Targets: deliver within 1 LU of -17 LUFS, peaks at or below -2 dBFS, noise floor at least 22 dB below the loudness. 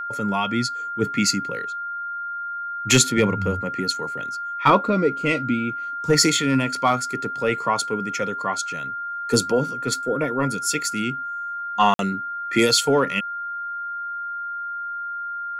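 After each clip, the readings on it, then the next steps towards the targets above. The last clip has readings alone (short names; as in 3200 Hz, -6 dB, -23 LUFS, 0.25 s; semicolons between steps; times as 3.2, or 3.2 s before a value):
dropouts 1; longest dropout 52 ms; steady tone 1400 Hz; tone level -27 dBFS; loudness -22.5 LUFS; peak -3.5 dBFS; loudness target -17.0 LUFS
-> interpolate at 11.94, 52 ms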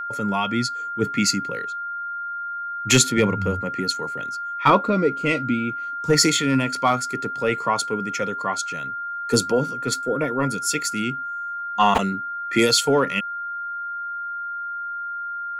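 dropouts 0; steady tone 1400 Hz; tone level -27 dBFS
-> notch 1400 Hz, Q 30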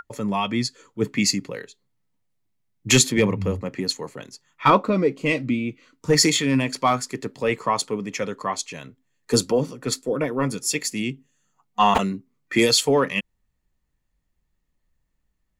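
steady tone none; loudness -22.5 LUFS; peak -3.5 dBFS; loudness target -17.0 LUFS
-> gain +5.5 dB; limiter -2 dBFS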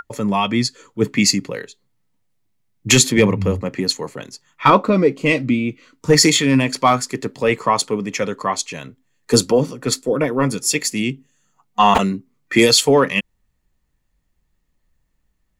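loudness -17.0 LUFS; peak -2.0 dBFS; noise floor -68 dBFS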